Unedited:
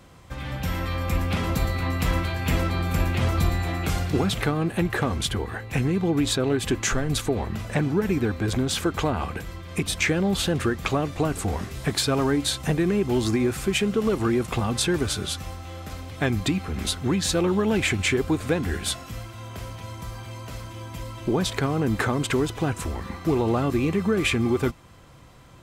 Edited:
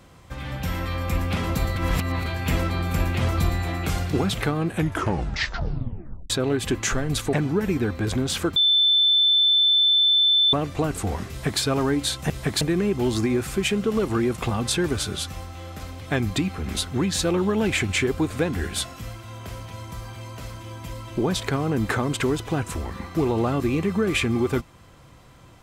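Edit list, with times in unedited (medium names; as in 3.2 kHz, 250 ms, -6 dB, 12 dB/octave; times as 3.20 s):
1.76–2.26 s: reverse
4.68 s: tape stop 1.62 s
7.33–7.74 s: delete
8.97–10.94 s: bleep 3.53 kHz -15 dBFS
11.71–12.02 s: copy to 12.71 s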